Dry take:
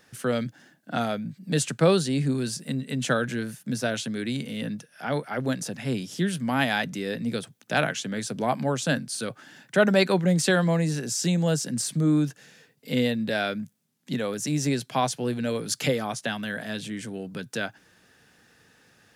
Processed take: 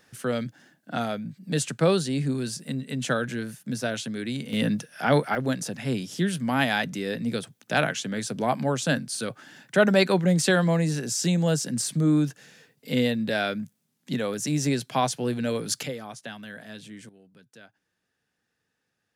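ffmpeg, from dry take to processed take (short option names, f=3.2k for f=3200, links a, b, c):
-af "asetnsamples=n=441:p=0,asendcmd='4.53 volume volume 7dB;5.35 volume volume 0.5dB;15.83 volume volume -9dB;17.09 volume volume -20dB',volume=-1.5dB"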